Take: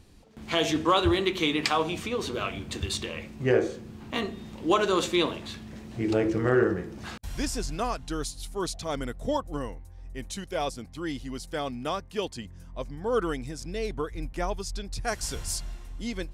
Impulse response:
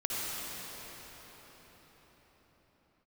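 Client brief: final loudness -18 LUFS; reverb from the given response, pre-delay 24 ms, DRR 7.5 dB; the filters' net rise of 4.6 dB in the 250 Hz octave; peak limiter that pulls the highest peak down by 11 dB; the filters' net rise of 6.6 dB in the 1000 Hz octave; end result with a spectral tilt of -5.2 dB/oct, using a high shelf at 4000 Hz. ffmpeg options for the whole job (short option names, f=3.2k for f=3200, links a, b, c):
-filter_complex "[0:a]equalizer=f=250:t=o:g=6,equalizer=f=1k:t=o:g=8,highshelf=f=4k:g=-3,alimiter=limit=-17dB:level=0:latency=1,asplit=2[a][b];[1:a]atrim=start_sample=2205,adelay=24[c];[b][c]afir=irnorm=-1:irlink=0,volume=-15dB[d];[a][d]amix=inputs=2:normalize=0,volume=11dB"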